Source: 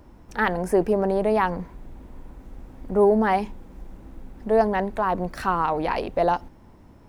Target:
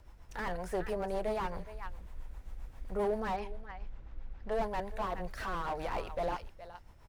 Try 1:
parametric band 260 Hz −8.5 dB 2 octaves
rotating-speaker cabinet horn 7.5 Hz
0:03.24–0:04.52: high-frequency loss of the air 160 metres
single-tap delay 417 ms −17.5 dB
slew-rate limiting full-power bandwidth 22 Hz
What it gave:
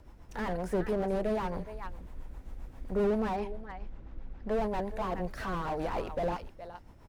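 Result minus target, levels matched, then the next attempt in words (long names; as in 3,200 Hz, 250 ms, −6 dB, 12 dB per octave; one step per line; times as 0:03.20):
250 Hz band +4.5 dB
parametric band 260 Hz −19 dB 2 octaves
rotating-speaker cabinet horn 7.5 Hz
0:03.24–0:04.52: high-frequency loss of the air 160 metres
single-tap delay 417 ms −17.5 dB
slew-rate limiting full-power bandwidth 22 Hz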